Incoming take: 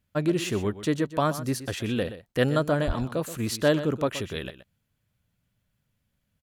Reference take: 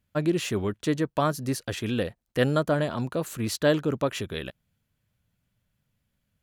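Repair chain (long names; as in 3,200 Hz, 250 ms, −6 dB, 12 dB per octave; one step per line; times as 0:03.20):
high-pass at the plosives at 0:02.86
echo removal 125 ms −13.5 dB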